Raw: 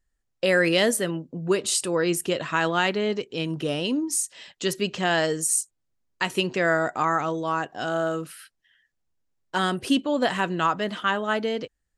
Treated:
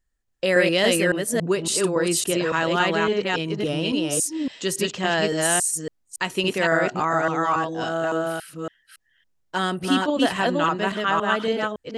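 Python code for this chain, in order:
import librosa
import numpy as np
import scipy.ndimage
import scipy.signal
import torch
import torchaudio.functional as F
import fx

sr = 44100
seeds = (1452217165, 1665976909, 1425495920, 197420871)

y = fx.reverse_delay(x, sr, ms=280, wet_db=-1.0)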